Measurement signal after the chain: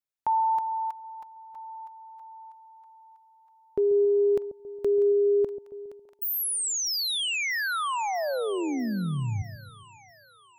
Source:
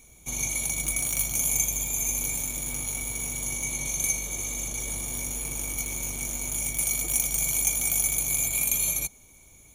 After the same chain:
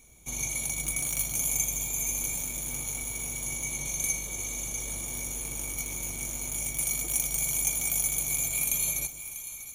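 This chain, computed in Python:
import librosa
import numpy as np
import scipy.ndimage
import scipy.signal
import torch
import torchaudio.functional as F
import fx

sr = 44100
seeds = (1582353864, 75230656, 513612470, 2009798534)

y = fx.echo_split(x, sr, split_hz=780.0, low_ms=137, high_ms=644, feedback_pct=52, wet_db=-12.5)
y = y * 10.0 ** (-3.0 / 20.0)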